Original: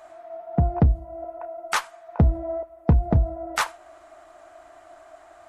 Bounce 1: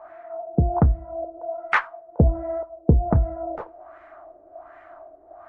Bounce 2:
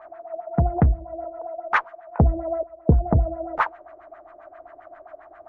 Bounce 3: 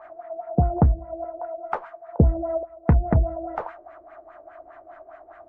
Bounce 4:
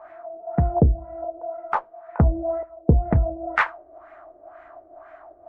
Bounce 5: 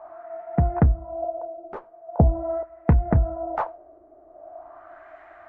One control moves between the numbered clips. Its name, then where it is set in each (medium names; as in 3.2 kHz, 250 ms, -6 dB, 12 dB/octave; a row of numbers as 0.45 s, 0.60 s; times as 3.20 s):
LFO low-pass, rate: 1.3 Hz, 7.5 Hz, 4.9 Hz, 2 Hz, 0.43 Hz